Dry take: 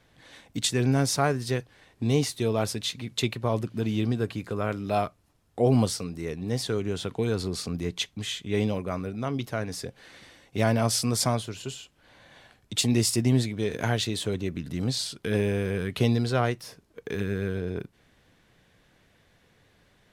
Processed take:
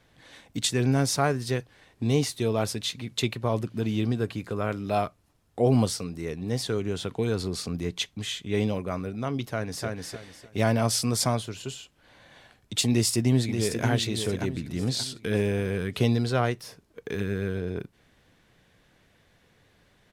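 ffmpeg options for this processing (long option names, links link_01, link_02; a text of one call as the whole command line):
ffmpeg -i in.wav -filter_complex "[0:a]asplit=2[link_01][link_02];[link_02]afade=type=in:start_time=9.44:duration=0.01,afade=type=out:start_time=9.86:duration=0.01,aecho=0:1:300|600|900|1200:0.749894|0.187474|0.0468684|0.0117171[link_03];[link_01][link_03]amix=inputs=2:normalize=0,asplit=2[link_04][link_05];[link_05]afade=type=in:start_time=12.9:duration=0.01,afade=type=out:start_time=13.87:duration=0.01,aecho=0:1:580|1160|1740|2320|2900:0.446684|0.178673|0.0714694|0.0285877|0.0114351[link_06];[link_04][link_06]amix=inputs=2:normalize=0" out.wav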